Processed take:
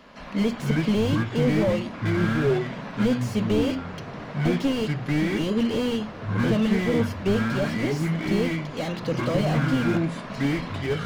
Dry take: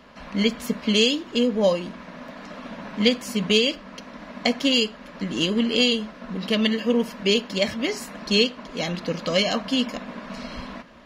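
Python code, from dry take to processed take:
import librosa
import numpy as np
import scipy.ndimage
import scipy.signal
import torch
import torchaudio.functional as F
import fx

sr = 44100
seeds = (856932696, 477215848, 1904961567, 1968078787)

y = fx.hum_notches(x, sr, base_hz=60, count=4)
y = fx.echo_pitch(y, sr, ms=138, semitones=-6, count=2, db_per_echo=-3.0)
y = fx.slew_limit(y, sr, full_power_hz=54.0)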